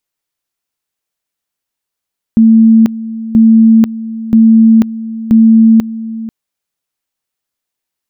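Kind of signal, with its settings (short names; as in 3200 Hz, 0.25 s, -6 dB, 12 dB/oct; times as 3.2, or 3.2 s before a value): two-level tone 224 Hz -2 dBFS, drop 16 dB, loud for 0.49 s, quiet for 0.49 s, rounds 4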